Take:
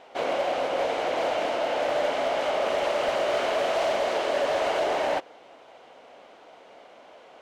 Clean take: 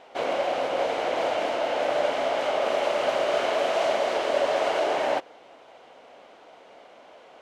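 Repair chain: clip repair -20 dBFS

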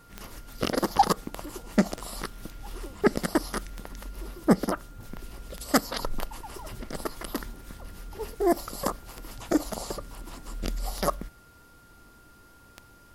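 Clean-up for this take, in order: de-click; band-stop 1.4 kHz, Q 30

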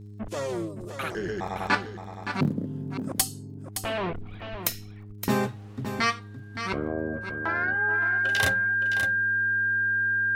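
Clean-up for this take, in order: de-click; de-hum 103.2 Hz, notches 4; band-stop 1.6 kHz, Q 30; inverse comb 567 ms -9 dB

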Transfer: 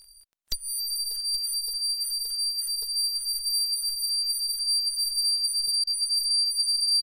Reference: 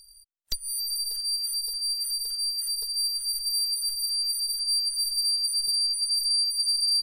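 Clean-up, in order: de-click; interpolate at 5.84 s, 30 ms; inverse comb 824 ms -14.5 dB

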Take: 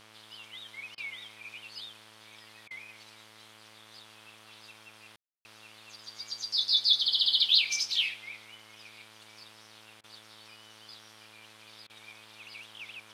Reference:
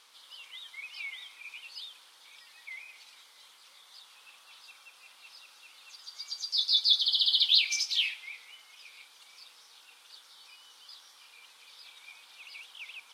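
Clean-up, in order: de-hum 109 Hz, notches 31; room tone fill 5.16–5.45 s; interpolate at 0.95/2.68/10.01/11.87 s, 26 ms

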